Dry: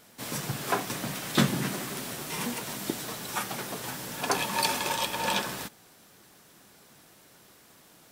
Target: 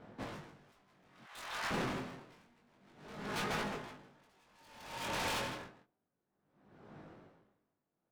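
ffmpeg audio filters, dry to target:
ffmpeg -i in.wav -filter_complex "[0:a]volume=27dB,asoftclip=hard,volume=-27dB,adynamicsmooth=sensitivity=4:basefreq=1200,asettb=1/sr,asplit=3[link_01][link_02][link_03];[link_01]atrim=end=1.084[link_04];[link_02]atrim=start=1.08:end=1.71,asetpts=PTS-STARTPTS,afade=type=in:duration=0.004:curve=qsin,afade=type=out:start_time=0.626:duration=0.004:curve=qsin,highpass=frequency=810:width=0.5412,highpass=frequency=810:width=1.3066[link_05];[link_03]atrim=start=1.706[link_06];[link_04][link_05]acrossfade=duration=0.004:curve1=hsin:curve2=qsin[link_07];[link_07][link_06]acrossfade=duration=0.004:curve1=qsin:curve2=hsin,asettb=1/sr,asplit=3[link_08][link_09][link_10];[link_08]atrim=end=3.014[link_11];[link_09]atrim=start=3.01:end=3.95,asetpts=PTS-STARTPTS,afade=type=in:duration=0.004:curve=qsin,afade=type=out:start_time=0.936:duration=0.004:curve=qsin,aecho=1:1:4.8:0.49,atrim=end_sample=41454[link_12];[link_10]atrim=start=3.946[link_13];[link_11][link_12]acrossfade=duration=0.004:curve1=hsin:curve2=qsin[link_14];[link_14][link_13]acrossfade=duration=0.004:curve1=qsin:curve2=hsin,asplit=2[link_15][link_16];[link_16]aecho=0:1:159:0.422[link_17];[link_15][link_17]amix=inputs=2:normalize=0,acompressor=threshold=-35dB:ratio=2.5,aeval=exprs='0.0141*(abs(mod(val(0)/0.0141+3,4)-2)-1)':channel_layout=same,flanger=delay=19:depth=4.5:speed=0.28,aeval=exprs='val(0)*pow(10,-34*(0.5-0.5*cos(2*PI*0.57*n/s))/20)':channel_layout=same,volume=9.5dB" out.wav

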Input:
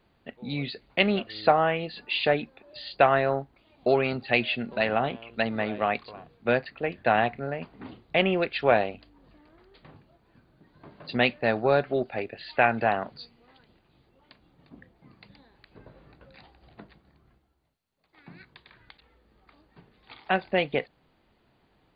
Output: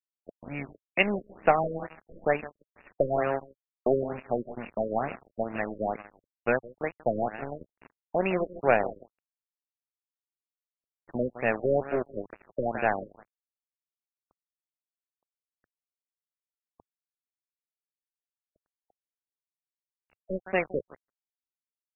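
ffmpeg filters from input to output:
ffmpeg -i in.wav -filter_complex "[0:a]asplit=2[link_01][link_02];[link_02]acompressor=threshold=-35dB:ratio=5,volume=-0.5dB[link_03];[link_01][link_03]amix=inputs=2:normalize=0,aeval=exprs='0.668*(cos(1*acos(clip(val(0)/0.668,-1,1)))-cos(1*PI/2))+0.0237*(cos(6*acos(clip(val(0)/0.668,-1,1)))-cos(6*PI/2))':channel_layout=same,equalizer=frequency=3300:width_type=o:width=1.7:gain=2.5,asplit=2[link_04][link_05];[link_05]aecho=0:1:161|322|483|644:0.266|0.117|0.0515|0.0227[link_06];[link_04][link_06]amix=inputs=2:normalize=0,aeval=exprs='sgn(val(0))*max(abs(val(0))-0.0355,0)':channel_layout=same,equalizer=frequency=110:width_type=o:width=0.5:gain=-6,afftfilt=real='re*lt(b*sr/1024,580*pow(2900/580,0.5+0.5*sin(2*PI*2.2*pts/sr)))':imag='im*lt(b*sr/1024,580*pow(2900/580,0.5+0.5*sin(2*PI*2.2*pts/sr)))':win_size=1024:overlap=0.75,volume=-1dB" out.wav

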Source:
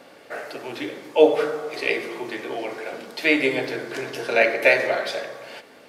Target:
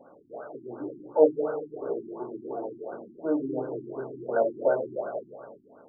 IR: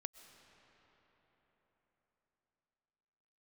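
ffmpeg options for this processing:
-filter_complex "[1:a]atrim=start_sample=2205,afade=type=out:start_time=0.38:duration=0.01,atrim=end_sample=17199[link_01];[0:a][link_01]afir=irnorm=-1:irlink=0,afftfilt=real='re*lt(b*sr/1024,370*pow(1600/370,0.5+0.5*sin(2*PI*2.8*pts/sr)))':imag='im*lt(b*sr/1024,370*pow(1600/370,0.5+0.5*sin(2*PI*2.8*pts/sr)))':win_size=1024:overlap=0.75"

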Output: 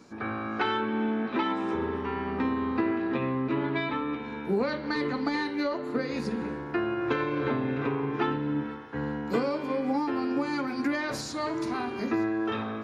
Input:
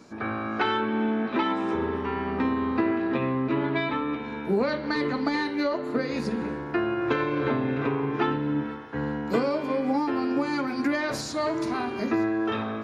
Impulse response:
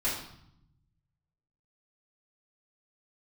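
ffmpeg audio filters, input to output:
-af "bandreject=frequency=630:width=12,volume=-2.5dB"

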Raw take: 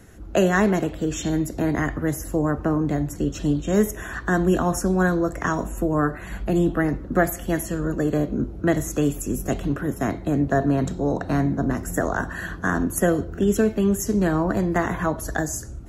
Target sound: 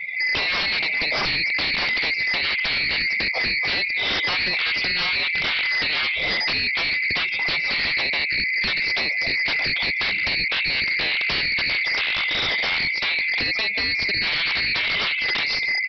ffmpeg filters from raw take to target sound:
ffmpeg -i in.wav -af "afftfilt=real='real(if(lt(b,920),b+92*(1-2*mod(floor(b/92),2)),b),0)':imag='imag(if(lt(b,920),b+92*(1-2*mod(floor(b/92),2)),b),0)':win_size=2048:overlap=0.75,highshelf=frequency=2200:gain=2.5,dynaudnorm=framelen=190:gausssize=5:maxgain=12dB,aecho=1:1:144:0.126,acompressor=threshold=-29dB:ratio=10,equalizer=frequency=430:width=0.43:gain=11.5,afftdn=noise_reduction=22:noise_floor=-44,aresample=11025,aeval=exprs='0.141*sin(PI/2*5.01*val(0)/0.141)':channel_layout=same,aresample=44100,volume=-2.5dB" out.wav

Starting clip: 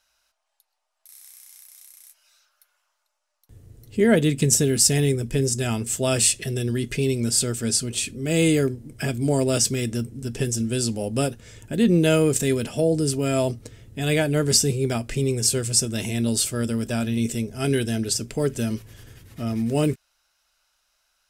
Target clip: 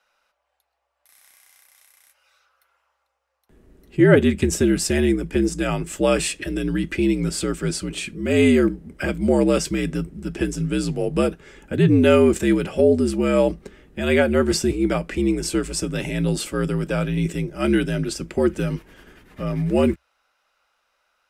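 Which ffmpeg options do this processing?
ffmpeg -i in.wav -filter_complex "[0:a]acrossover=split=220 2800:gain=0.2 1 0.178[link_01][link_02][link_03];[link_01][link_02][link_03]amix=inputs=3:normalize=0,afreqshift=-65,volume=6dB" out.wav

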